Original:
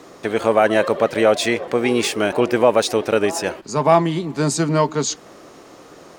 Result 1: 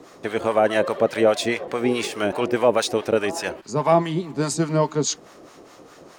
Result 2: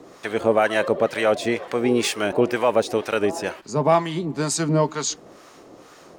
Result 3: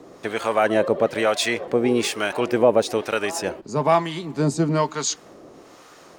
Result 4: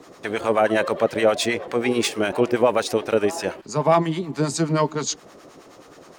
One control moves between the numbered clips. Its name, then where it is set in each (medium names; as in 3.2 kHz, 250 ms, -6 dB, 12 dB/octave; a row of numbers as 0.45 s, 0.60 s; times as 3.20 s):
harmonic tremolo, rate: 4.8 Hz, 2.1 Hz, 1.1 Hz, 9.5 Hz